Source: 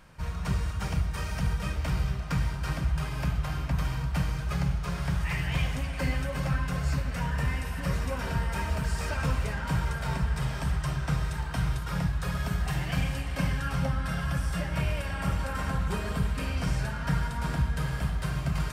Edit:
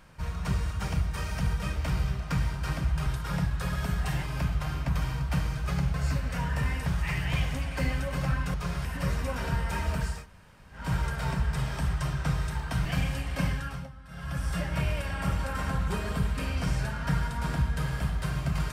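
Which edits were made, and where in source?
4.77–5.08 swap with 6.76–7.68
8.98–9.65 room tone, crossfade 0.24 s
11.68–12.85 move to 3.06
13.47–14.51 dip -18 dB, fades 0.43 s

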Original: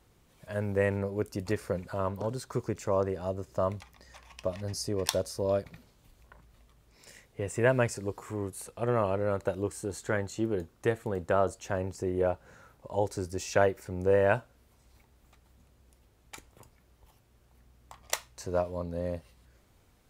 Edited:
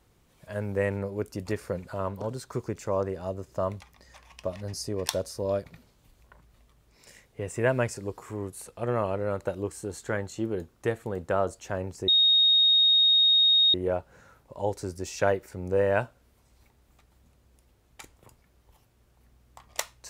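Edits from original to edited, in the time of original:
12.08 add tone 3730 Hz -17 dBFS 1.66 s

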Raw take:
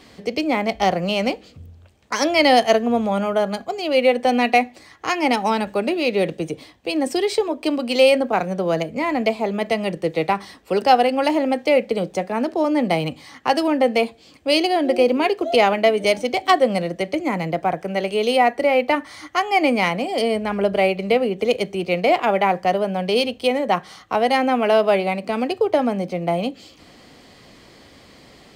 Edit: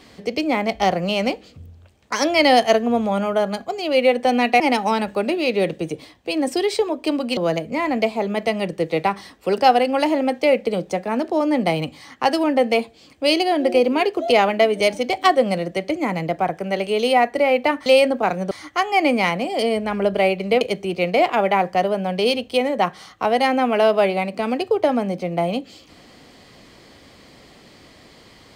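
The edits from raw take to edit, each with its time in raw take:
4.6–5.19 cut
7.96–8.61 move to 19.1
21.2–21.51 cut

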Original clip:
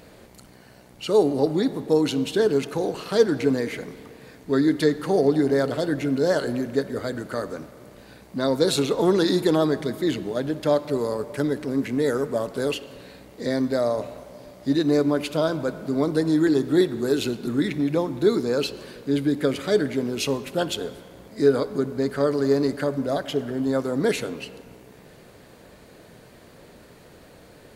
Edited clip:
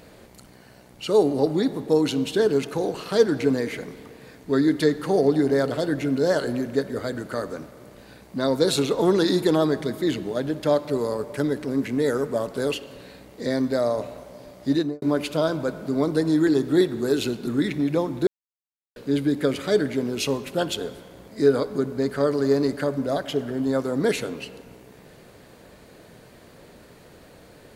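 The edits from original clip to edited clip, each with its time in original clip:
14.75–15.02 studio fade out
18.27–18.96 mute

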